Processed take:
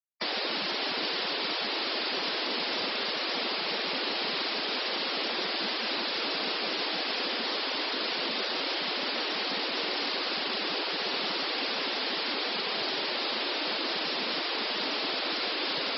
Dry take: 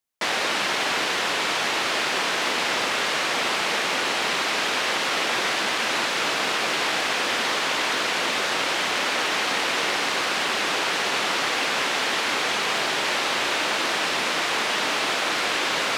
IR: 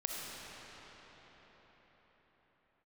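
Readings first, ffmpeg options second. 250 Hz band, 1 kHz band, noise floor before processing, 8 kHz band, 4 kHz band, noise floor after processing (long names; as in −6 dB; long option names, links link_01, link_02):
−3.5 dB, −9.5 dB, −25 dBFS, below −25 dB, −4.0 dB, −32 dBFS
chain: -filter_complex "[0:a]highshelf=frequency=6300:width_type=q:width=3:gain=-9,afftfilt=real='re*gte(hypot(re,im),0.0631)':imag='im*gte(hypot(re,im),0.0631)':win_size=1024:overlap=0.75,acrossover=split=790|930[link_01][link_02][link_03];[link_03]alimiter=limit=-20dB:level=0:latency=1:release=18[link_04];[link_01][link_02][link_04]amix=inputs=3:normalize=0,acrossover=split=430|3000[link_05][link_06][link_07];[link_06]acompressor=threshold=-46dB:ratio=1.5[link_08];[link_05][link_08][link_07]amix=inputs=3:normalize=0,volume=-1.5dB"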